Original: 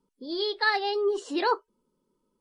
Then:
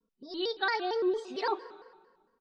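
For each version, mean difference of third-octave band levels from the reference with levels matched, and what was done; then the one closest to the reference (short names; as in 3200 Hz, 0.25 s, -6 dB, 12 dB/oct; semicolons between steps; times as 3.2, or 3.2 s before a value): 6.0 dB: LPF 5400 Hz 12 dB/oct; comb 4.8 ms, depth 84%; plate-style reverb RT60 1.5 s, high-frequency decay 0.8×, pre-delay 0.105 s, DRR 17 dB; shaped vibrato square 4.4 Hz, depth 160 cents; gain -8 dB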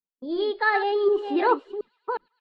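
4.0 dB: reverse delay 0.362 s, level -8 dB; gate -42 dBFS, range -36 dB; air absorption 490 m; on a send: thin delay 0.111 s, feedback 67%, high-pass 3800 Hz, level -19 dB; on the sum: gain +6 dB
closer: second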